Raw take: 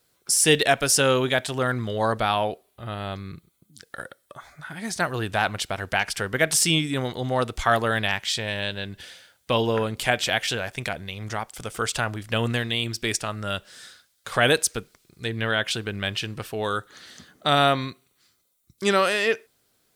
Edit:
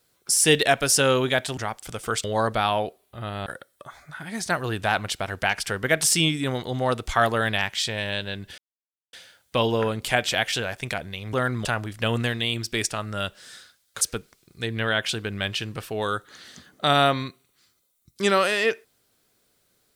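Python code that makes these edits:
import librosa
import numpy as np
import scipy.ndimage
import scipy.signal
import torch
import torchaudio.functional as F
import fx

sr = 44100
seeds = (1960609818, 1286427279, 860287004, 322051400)

y = fx.edit(x, sr, fx.swap(start_s=1.57, length_s=0.32, other_s=11.28, other_length_s=0.67),
    fx.cut(start_s=3.11, length_s=0.85),
    fx.insert_silence(at_s=9.08, length_s=0.55),
    fx.cut(start_s=14.31, length_s=0.32), tone=tone)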